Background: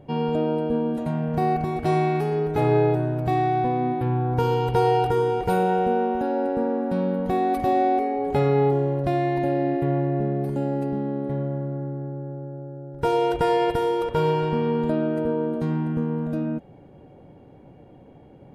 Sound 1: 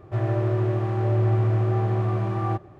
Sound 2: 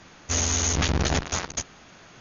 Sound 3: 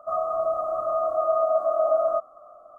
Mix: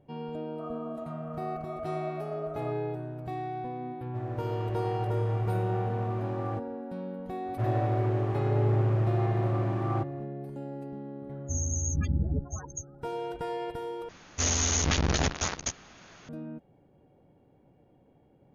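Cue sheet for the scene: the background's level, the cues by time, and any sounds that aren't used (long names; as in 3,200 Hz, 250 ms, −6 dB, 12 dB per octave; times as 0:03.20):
background −13.5 dB
0:00.52: mix in 3 −16.5 dB
0:04.02: mix in 1 −15 dB + automatic gain control gain up to 6.5 dB
0:07.46: mix in 1 −4.5 dB + highs frequency-modulated by the lows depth 0.16 ms
0:11.20: mix in 2 −1.5 dB + spectral peaks only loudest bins 8
0:14.09: overwrite with 2 −2.5 dB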